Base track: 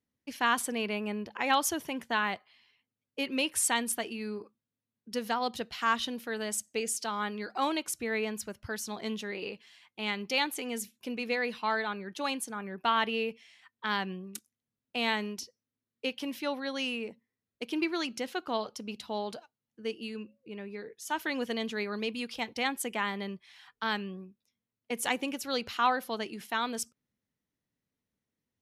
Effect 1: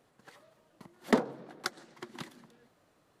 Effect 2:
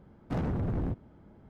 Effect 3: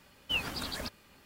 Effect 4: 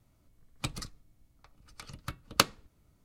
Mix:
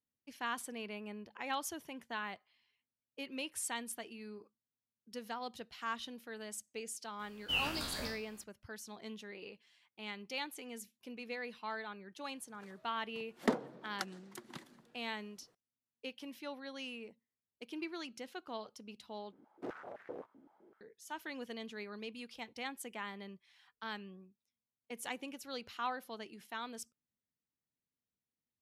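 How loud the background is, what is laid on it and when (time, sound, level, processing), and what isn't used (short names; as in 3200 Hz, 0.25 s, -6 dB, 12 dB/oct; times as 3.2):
base track -11.5 dB
7.19 add 3 -5.5 dB + spectral trails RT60 0.51 s
12.35 add 1 -6 dB
19.32 replace with 2 -11 dB + stepped high-pass 7.8 Hz 280–1800 Hz
not used: 4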